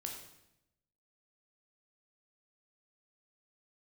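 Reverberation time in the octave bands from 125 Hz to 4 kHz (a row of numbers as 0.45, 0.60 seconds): 1.1, 1.0, 0.90, 0.80, 0.80, 0.75 seconds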